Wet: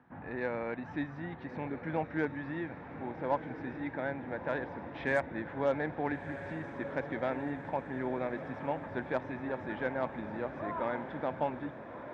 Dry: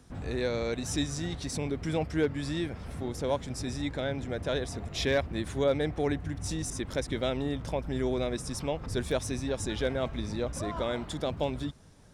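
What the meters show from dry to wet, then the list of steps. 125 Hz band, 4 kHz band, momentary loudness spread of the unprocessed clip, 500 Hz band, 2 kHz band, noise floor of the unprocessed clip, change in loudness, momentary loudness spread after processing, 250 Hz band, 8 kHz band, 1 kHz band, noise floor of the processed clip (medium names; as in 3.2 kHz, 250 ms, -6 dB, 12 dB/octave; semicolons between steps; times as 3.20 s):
-9.0 dB, -19.0 dB, 6 LU, -4.5 dB, +0.5 dB, -44 dBFS, -4.5 dB, 8 LU, -4.5 dB, under -30 dB, +2.0 dB, -46 dBFS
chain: cabinet simulation 170–2200 Hz, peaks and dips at 420 Hz -6 dB, 890 Hz +9 dB, 1.7 kHz +6 dB; Chebyshev shaper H 6 -29 dB, 7 -39 dB, 8 -32 dB, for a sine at -14 dBFS; echo that smears into a reverb 1332 ms, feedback 65%, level -10.5 dB; trim -3 dB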